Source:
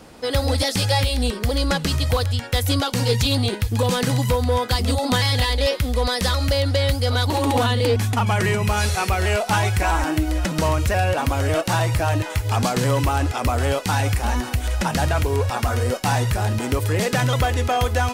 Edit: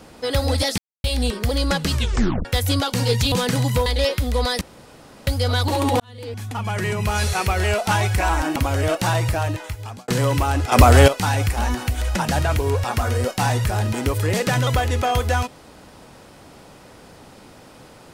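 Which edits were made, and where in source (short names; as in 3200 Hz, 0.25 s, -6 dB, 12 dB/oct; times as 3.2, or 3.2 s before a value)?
0.78–1.04 mute
1.94 tape stop 0.51 s
3.32–3.86 cut
4.4–5.48 cut
6.23–6.89 room tone
7.62–8.92 fade in
10.18–11.22 cut
11.9–12.74 fade out
13.38–13.74 gain +10 dB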